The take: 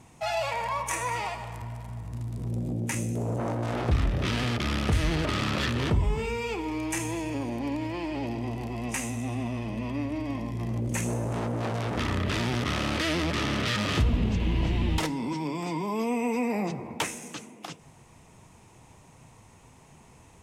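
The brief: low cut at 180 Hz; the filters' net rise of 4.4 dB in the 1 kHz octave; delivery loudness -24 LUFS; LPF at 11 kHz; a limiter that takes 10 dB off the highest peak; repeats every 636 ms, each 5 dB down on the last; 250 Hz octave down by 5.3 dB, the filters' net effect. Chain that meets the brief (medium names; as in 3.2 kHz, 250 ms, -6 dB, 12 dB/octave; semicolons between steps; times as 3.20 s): high-pass 180 Hz; low-pass 11 kHz; peaking EQ 250 Hz -5.5 dB; peaking EQ 1 kHz +5.5 dB; peak limiter -21.5 dBFS; feedback delay 636 ms, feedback 56%, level -5 dB; trim +7.5 dB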